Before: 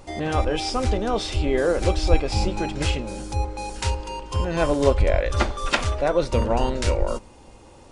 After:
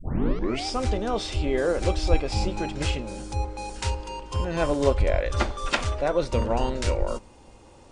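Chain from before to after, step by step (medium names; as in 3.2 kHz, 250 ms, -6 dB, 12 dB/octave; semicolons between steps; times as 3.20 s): tape start-up on the opening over 0.66 s; trim -3 dB; MP2 192 kbps 32 kHz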